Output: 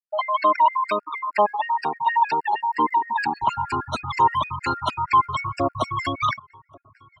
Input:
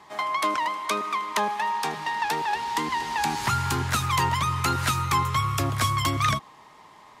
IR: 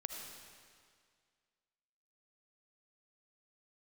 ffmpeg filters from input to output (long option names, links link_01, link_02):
-filter_complex "[0:a]afftfilt=real='re*gte(hypot(re,im),0.0501)':imag='im*gte(hypot(re,im),0.0501)':win_size=1024:overlap=0.75,acontrast=56,equalizer=frequency=160:width_type=o:width=0.33:gain=-9,equalizer=frequency=630:width_type=o:width=0.33:gain=10,equalizer=frequency=1000:width_type=o:width=0.33:gain=8,acrossover=split=240|4200[link_01][link_02][link_03];[link_01]acompressor=threshold=-37dB:ratio=4[link_04];[link_03]acompressor=threshold=-46dB:ratio=4[link_05];[link_04][link_02][link_05]amix=inputs=3:normalize=0,equalizer=frequency=1200:width_type=o:width=0.33:gain=-7,aphaser=in_gain=1:out_gain=1:delay=1.1:decay=0.38:speed=0.7:type=triangular,asplit=2[link_06][link_07];[link_07]adelay=1153,lowpass=frequency=1500:poles=1,volume=-23.5dB,asplit=2[link_08][link_09];[link_09]adelay=1153,lowpass=frequency=1500:poles=1,volume=0.36[link_10];[link_06][link_08][link_10]amix=inputs=3:normalize=0,alimiter=level_in=5dB:limit=-1dB:release=50:level=0:latency=1,afftfilt=real='re*gt(sin(2*PI*6.4*pts/sr)*(1-2*mod(floor(b*sr/1024/1400),2)),0)':imag='im*gt(sin(2*PI*6.4*pts/sr)*(1-2*mod(floor(b*sr/1024/1400),2)),0)':win_size=1024:overlap=0.75,volume=-7dB"